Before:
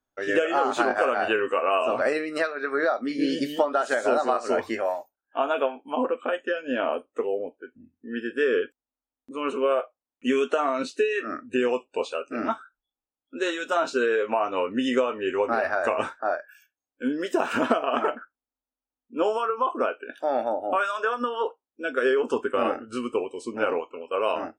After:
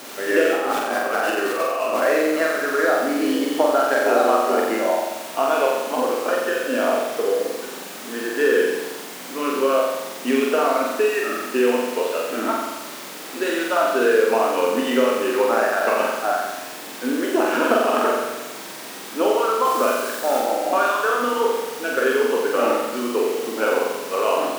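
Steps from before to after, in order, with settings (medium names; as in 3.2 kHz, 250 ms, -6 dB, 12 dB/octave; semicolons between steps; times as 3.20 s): median filter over 9 samples; added noise pink -39 dBFS; high-pass 230 Hz 24 dB/octave; 0.54–2.02 s: compressor with a negative ratio -27 dBFS, ratio -0.5; 19.65–20.40 s: treble shelf 4.1 kHz +6.5 dB; flutter echo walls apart 7.7 m, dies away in 1.1 s; trim +2.5 dB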